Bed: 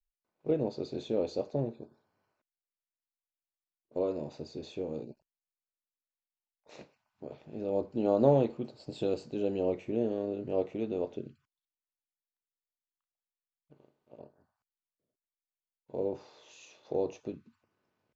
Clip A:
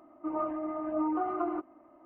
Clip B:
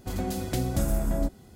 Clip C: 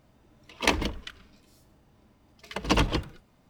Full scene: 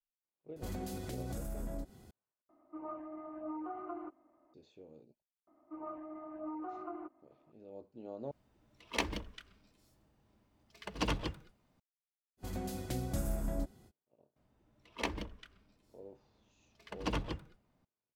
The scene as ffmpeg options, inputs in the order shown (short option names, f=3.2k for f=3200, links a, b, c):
-filter_complex "[2:a]asplit=2[a][b];[1:a]asplit=2[c][d];[3:a]asplit=2[e][f];[0:a]volume=-19dB[g];[a]alimiter=level_in=2.5dB:limit=-24dB:level=0:latency=1:release=110,volume=-2.5dB[h];[f]highshelf=f=2.4k:g=-5[i];[g]asplit=3[j][k][l];[j]atrim=end=2.494[m];[c]atrim=end=2.05,asetpts=PTS-STARTPTS,volume=-11.5dB[n];[k]atrim=start=4.536:end=8.314[o];[e]atrim=end=3.49,asetpts=PTS-STARTPTS,volume=-10.5dB[p];[l]atrim=start=11.796[q];[h]atrim=end=1.55,asetpts=PTS-STARTPTS,volume=-6dB,afade=t=in:d=0.004:c=hsin,afade=t=out:st=1.546:d=0.004:c=hsin,adelay=560[r];[d]atrim=end=2.05,asetpts=PTS-STARTPTS,volume=-12dB,afade=t=in:d=0.004:c=hsin,afade=t=out:st=2.046:d=0.004:c=hsin,adelay=5470[s];[b]atrim=end=1.55,asetpts=PTS-STARTPTS,volume=-9.5dB,afade=t=in:d=0.05,afade=t=out:st=1.5:d=0.05,adelay=12370[t];[i]atrim=end=3.49,asetpts=PTS-STARTPTS,volume=-11.5dB,afade=t=in:d=0.004:c=hsin,afade=t=out:st=3.486:d=0.004:c=hsin,adelay=14360[u];[m][n]acrossfade=d=0.004:c1=hsin:c2=hsin[v];[v][o]acrossfade=d=0.004:c1=hsin:c2=hsin[w];[w][p]acrossfade=d=0.004:c1=hsin:c2=hsin[x];[x][q]acrossfade=d=0.004:c1=hsin:c2=hsin[y];[y][r][s][t][u]amix=inputs=5:normalize=0"